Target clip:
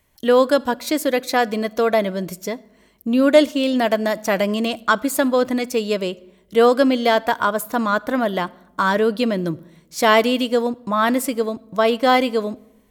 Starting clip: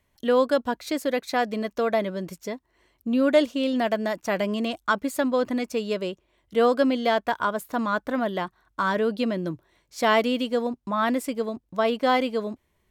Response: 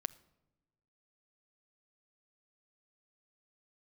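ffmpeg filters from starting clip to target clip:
-filter_complex "[0:a]asplit=2[link_01][link_02];[link_02]highshelf=frequency=6500:gain=10.5[link_03];[1:a]atrim=start_sample=2205[link_04];[link_03][link_04]afir=irnorm=-1:irlink=0,volume=7.5dB[link_05];[link_01][link_05]amix=inputs=2:normalize=0,volume=-4dB"

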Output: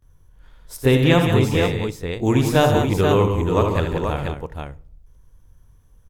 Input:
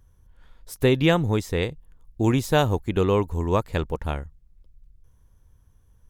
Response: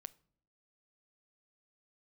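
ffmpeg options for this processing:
-filter_complex "[0:a]aecho=1:1:57|77|146|184|482:0.266|0.398|0.224|0.422|0.531,asplit=2[link_01][link_02];[1:a]atrim=start_sample=2205,adelay=23[link_03];[link_02][link_03]afir=irnorm=-1:irlink=0,volume=18.5dB[link_04];[link_01][link_04]amix=inputs=2:normalize=0,volume=-10.5dB"

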